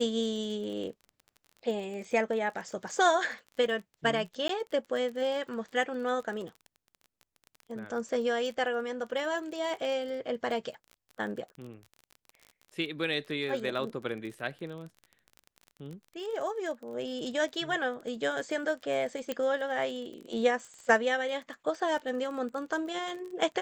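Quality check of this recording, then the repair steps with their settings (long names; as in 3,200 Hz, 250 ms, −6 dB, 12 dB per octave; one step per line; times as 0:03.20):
surface crackle 28 per second −38 dBFS
0:04.48–0:04.49: drop-out 13 ms
0:19.32: click −18 dBFS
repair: click removal
repair the gap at 0:04.48, 13 ms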